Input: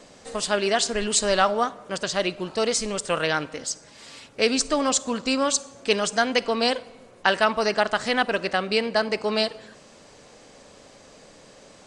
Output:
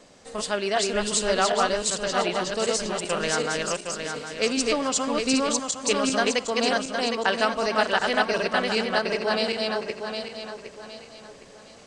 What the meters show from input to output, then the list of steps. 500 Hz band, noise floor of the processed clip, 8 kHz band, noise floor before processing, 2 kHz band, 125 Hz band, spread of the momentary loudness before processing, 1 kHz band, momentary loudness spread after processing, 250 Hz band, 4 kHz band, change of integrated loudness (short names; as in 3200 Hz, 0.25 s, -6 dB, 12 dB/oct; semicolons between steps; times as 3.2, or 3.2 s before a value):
-0.5 dB, -48 dBFS, -0.5 dB, -51 dBFS, 0.0 dB, -0.5 dB, 9 LU, -0.5 dB, 10 LU, 0.0 dB, -0.5 dB, -1.0 dB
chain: regenerating reverse delay 0.381 s, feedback 58%, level -1.5 dB; gain -3.5 dB